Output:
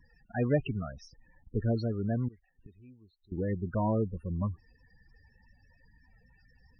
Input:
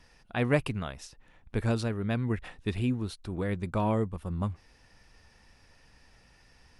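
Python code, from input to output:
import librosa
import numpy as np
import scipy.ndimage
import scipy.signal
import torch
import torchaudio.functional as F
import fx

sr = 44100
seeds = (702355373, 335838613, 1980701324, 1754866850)

y = fx.cheby_harmonics(x, sr, harmonics=(5,), levels_db=(-29,), full_scale_db=-12.5)
y = fx.gate_flip(y, sr, shuts_db=-33.0, range_db=-25, at=(2.28, 3.32))
y = fx.spec_topn(y, sr, count=16)
y = F.gain(torch.from_numpy(y), -1.5).numpy()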